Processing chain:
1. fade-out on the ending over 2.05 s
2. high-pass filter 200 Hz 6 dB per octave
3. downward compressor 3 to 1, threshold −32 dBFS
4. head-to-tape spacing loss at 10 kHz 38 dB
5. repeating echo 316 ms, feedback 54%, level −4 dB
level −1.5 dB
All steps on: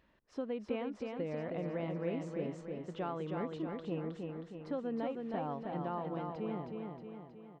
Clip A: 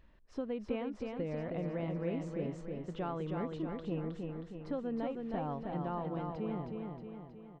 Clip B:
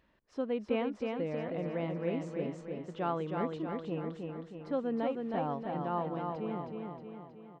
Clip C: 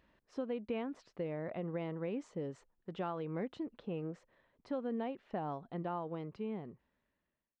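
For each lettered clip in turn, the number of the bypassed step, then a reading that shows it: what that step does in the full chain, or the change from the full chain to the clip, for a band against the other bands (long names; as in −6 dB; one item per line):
2, 125 Hz band +3.5 dB
3, average gain reduction 2.0 dB
5, echo-to-direct ratio −2.5 dB to none audible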